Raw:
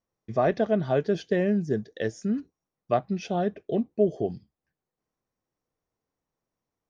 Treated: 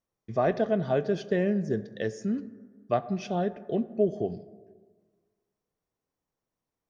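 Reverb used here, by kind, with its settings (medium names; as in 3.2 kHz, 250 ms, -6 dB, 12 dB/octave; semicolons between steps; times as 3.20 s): plate-style reverb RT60 1.6 s, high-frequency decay 0.35×, DRR 14 dB; trim -2 dB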